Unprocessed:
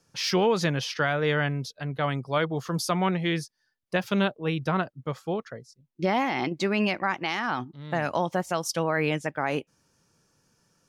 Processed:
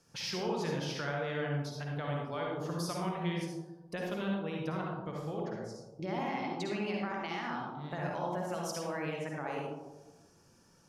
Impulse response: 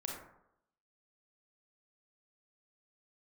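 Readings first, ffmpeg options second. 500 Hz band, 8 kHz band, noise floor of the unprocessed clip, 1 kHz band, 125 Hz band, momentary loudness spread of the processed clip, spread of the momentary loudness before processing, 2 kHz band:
-9.0 dB, -9.0 dB, -76 dBFS, -9.0 dB, -7.5 dB, 6 LU, 8 LU, -11.5 dB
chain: -filter_complex "[0:a]acompressor=threshold=0.00708:ratio=2.5[s0];[1:a]atrim=start_sample=2205,asetrate=26901,aresample=44100[s1];[s0][s1]afir=irnorm=-1:irlink=0"

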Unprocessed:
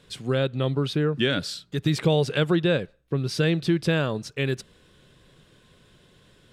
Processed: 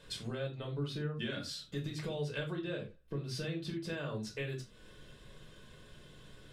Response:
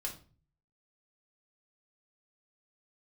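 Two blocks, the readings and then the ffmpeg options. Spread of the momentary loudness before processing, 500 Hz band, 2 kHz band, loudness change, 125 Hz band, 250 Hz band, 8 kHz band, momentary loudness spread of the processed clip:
6 LU, -15.5 dB, -14.0 dB, -14.5 dB, -14.0 dB, -15.5 dB, -10.0 dB, 18 LU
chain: -filter_complex "[0:a]acompressor=threshold=0.0126:ratio=4[s0];[1:a]atrim=start_sample=2205,afade=t=out:st=0.15:d=0.01,atrim=end_sample=7056[s1];[s0][s1]afir=irnorm=-1:irlink=0"

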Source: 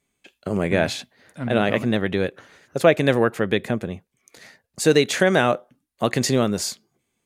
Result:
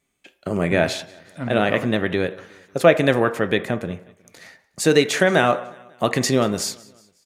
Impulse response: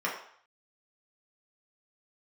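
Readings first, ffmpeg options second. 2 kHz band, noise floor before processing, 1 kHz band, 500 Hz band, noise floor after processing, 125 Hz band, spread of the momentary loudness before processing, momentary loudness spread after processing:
+2.0 dB, -76 dBFS, +2.5 dB, +1.0 dB, -67 dBFS, 0.0 dB, 15 LU, 16 LU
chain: -filter_complex "[0:a]aecho=1:1:182|364|546:0.0668|0.0334|0.0167,asplit=2[s0][s1];[1:a]atrim=start_sample=2205[s2];[s1][s2]afir=irnorm=-1:irlink=0,volume=0.158[s3];[s0][s3]amix=inputs=2:normalize=0"

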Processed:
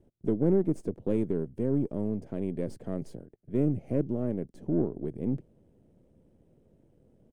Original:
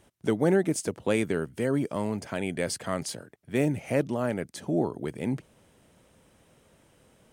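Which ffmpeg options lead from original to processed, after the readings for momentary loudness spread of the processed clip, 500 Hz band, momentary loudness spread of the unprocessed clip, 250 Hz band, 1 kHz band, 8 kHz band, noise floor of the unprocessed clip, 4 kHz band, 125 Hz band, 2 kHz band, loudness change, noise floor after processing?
10 LU, -3.0 dB, 8 LU, -0.5 dB, -12.5 dB, under -20 dB, -63 dBFS, under -20 dB, 0.0 dB, under -20 dB, -2.0 dB, -65 dBFS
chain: -filter_complex "[0:a]aeval=exprs='if(lt(val(0),0),0.447*val(0),val(0))':c=same,firequalizer=gain_entry='entry(360,0);entry(1100,-21);entry(3800,-24)':delay=0.05:min_phase=1,asplit=2[s0][s1];[s1]asoftclip=type=tanh:threshold=0.0422,volume=0.398[s2];[s0][s2]amix=inputs=2:normalize=0"

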